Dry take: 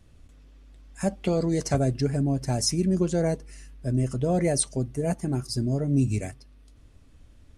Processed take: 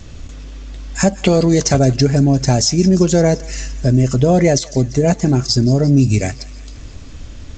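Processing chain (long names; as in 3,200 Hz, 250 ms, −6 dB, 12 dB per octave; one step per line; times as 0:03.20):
high-shelf EQ 5,000 Hz +9.5 dB
downward compressor 2 to 1, threshold −36 dBFS, peak gain reduction 12.5 dB
feedback echo with a high-pass in the loop 172 ms, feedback 73%, high-pass 980 Hz, level −19 dB
boost into a limiter +20 dB
G.722 64 kbit/s 16,000 Hz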